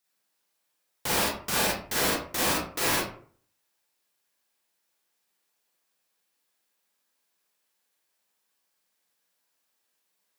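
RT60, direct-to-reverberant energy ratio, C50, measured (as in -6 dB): 0.50 s, -5.5 dB, 0.5 dB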